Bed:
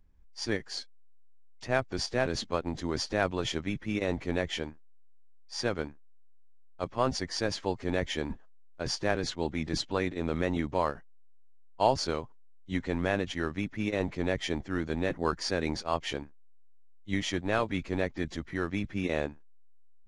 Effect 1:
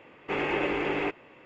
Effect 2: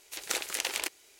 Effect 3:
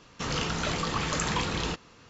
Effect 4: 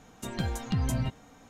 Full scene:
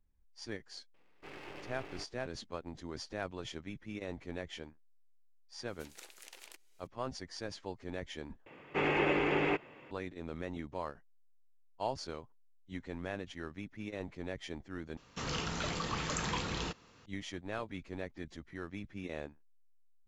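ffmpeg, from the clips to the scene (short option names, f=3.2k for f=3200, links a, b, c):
-filter_complex "[1:a]asplit=2[a][b];[0:a]volume=-11.5dB[c];[a]aeval=exprs='max(val(0),0)':c=same[d];[2:a]acompressor=threshold=-45dB:ratio=1.5:attack=0.49:release=208:knee=1:detection=rms[e];[b]equalizer=f=150:t=o:w=0.42:g=5[f];[c]asplit=3[g][h][i];[g]atrim=end=8.464[j];[f]atrim=end=1.45,asetpts=PTS-STARTPTS,volume=-2dB[k];[h]atrim=start=9.906:end=14.974[l];[3:a]atrim=end=2.09,asetpts=PTS-STARTPTS,volume=-7dB[m];[i]atrim=start=17.056[n];[d]atrim=end=1.45,asetpts=PTS-STARTPTS,volume=-16dB,afade=t=in:d=0.004:c=hsin,afade=t=out:st=1.446:d=0.004:c=hsin,adelay=940[o];[e]atrim=end=1.19,asetpts=PTS-STARTPTS,volume=-12dB,afade=t=in:d=0.004:c=hsin,afade=t=out:st=1.186:d=0.004:c=hsin,adelay=5680[p];[j][k]acrossfade=d=0.004:c1=hsin:c2=hsin[q];[q][l]acrossfade=d=0.004:c1=hsin:c2=hsin[r];[r][m]acrossfade=d=0.004:c1=hsin:c2=hsin[s];[s][n]acrossfade=d=0.004:c1=hsin:c2=hsin[t];[t][o][p]amix=inputs=3:normalize=0"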